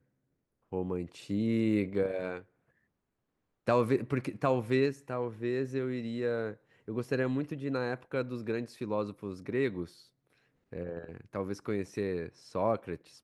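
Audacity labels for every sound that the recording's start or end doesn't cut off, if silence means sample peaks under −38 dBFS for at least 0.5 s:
0.730000	2.390000	sound
3.670000	9.850000	sound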